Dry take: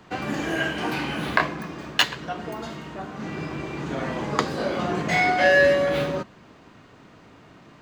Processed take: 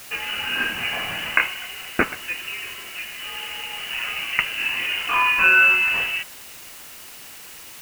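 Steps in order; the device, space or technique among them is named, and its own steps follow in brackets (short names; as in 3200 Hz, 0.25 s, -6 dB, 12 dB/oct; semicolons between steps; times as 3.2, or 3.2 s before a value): scrambled radio voice (BPF 310–3200 Hz; inverted band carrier 3200 Hz; white noise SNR 17 dB); gain +2.5 dB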